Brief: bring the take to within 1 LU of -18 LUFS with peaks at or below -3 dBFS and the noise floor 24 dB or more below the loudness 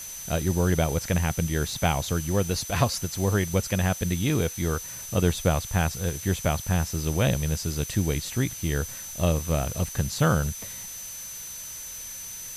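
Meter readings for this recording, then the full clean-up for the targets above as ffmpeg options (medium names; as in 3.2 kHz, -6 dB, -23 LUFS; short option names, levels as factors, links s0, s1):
steady tone 6.1 kHz; tone level -38 dBFS; noise floor -38 dBFS; noise floor target -51 dBFS; loudness -27.0 LUFS; peak level -7.0 dBFS; loudness target -18.0 LUFS
-> -af "bandreject=f=6100:w=30"
-af "afftdn=nr=13:nf=-38"
-af "volume=2.82,alimiter=limit=0.708:level=0:latency=1"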